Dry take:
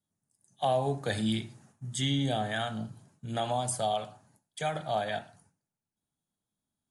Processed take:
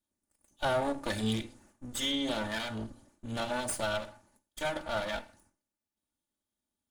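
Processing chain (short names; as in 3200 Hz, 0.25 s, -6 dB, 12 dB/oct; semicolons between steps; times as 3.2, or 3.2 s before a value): minimum comb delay 3.4 ms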